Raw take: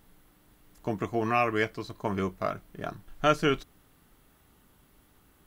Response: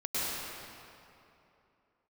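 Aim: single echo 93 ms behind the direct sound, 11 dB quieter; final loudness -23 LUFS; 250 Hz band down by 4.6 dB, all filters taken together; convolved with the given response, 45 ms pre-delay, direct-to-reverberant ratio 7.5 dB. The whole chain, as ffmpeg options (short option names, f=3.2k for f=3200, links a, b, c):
-filter_complex "[0:a]equalizer=f=250:t=o:g=-6.5,aecho=1:1:93:0.282,asplit=2[a][b];[1:a]atrim=start_sample=2205,adelay=45[c];[b][c]afir=irnorm=-1:irlink=0,volume=-15.5dB[d];[a][d]amix=inputs=2:normalize=0,volume=7.5dB"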